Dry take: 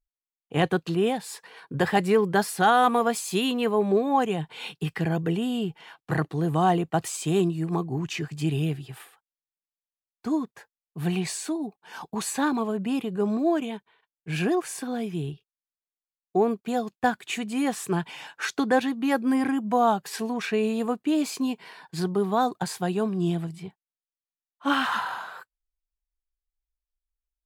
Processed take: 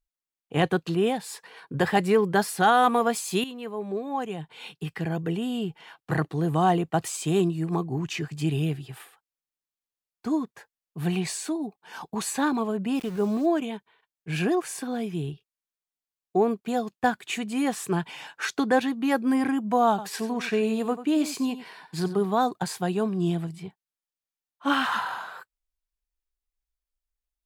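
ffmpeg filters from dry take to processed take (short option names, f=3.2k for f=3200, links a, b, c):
-filter_complex "[0:a]asplit=3[a][b][c];[a]afade=t=out:st=12.94:d=0.02[d];[b]aeval=exprs='val(0)*gte(abs(val(0)),0.0106)':c=same,afade=t=in:st=12.94:d=0.02,afade=t=out:st=13.45:d=0.02[e];[c]afade=t=in:st=13.45:d=0.02[f];[d][e][f]amix=inputs=3:normalize=0,asettb=1/sr,asplit=3[g][h][i];[g]atrim=end=19.894[j];[h]atrim=start=19.89:end=22.25,asetpts=PTS-STARTPTS,afade=t=in:d=0.004:c=qsin,afade=t=out:st=2.356:d=0.004:c=qsin,aecho=1:1:91:0.224,atrim=end_sample=104076[k];[i]atrim=start=22.246[l];[j][k]acrossfade=d=0.004:c1=hsin:c2=qsin[m];[m][l]acrossfade=d=0.004:c1=qsin:c2=hsin,asplit=2[n][o];[n]atrim=end=3.44,asetpts=PTS-STARTPTS,afade=t=out:st=3.436:d=0.004:c=hsin:silence=0.223872[p];[o]atrim=start=3.44,asetpts=PTS-STARTPTS,afade=t=in:d=2.68:silence=0.223872[q];[p][q]concat=n=2:v=0:a=1"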